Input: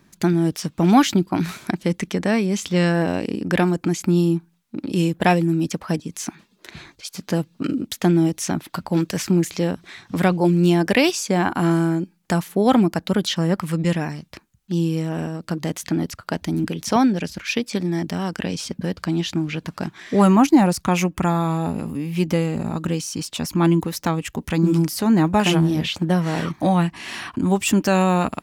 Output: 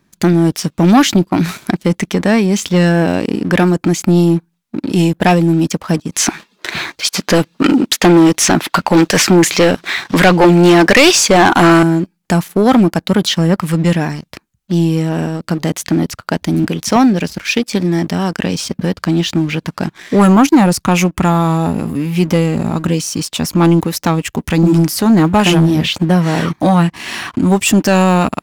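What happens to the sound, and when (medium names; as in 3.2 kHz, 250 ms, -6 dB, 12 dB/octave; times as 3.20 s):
6.12–11.83 s: overdrive pedal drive 20 dB, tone 3.9 kHz, clips at -3.5 dBFS
whole clip: waveshaping leveller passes 2; trim +1 dB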